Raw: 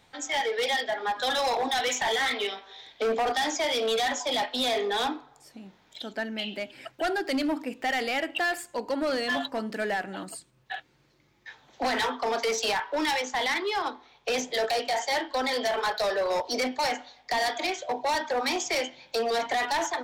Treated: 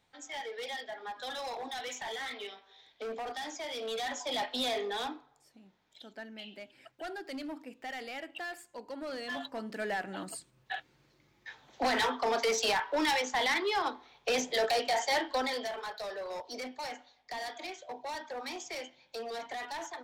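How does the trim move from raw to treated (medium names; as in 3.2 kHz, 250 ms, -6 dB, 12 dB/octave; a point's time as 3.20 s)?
3.66 s -12.5 dB
4.54 s -4.5 dB
5.58 s -13 dB
8.95 s -13 dB
10.33 s -2 dB
15.33 s -2 dB
15.80 s -12.5 dB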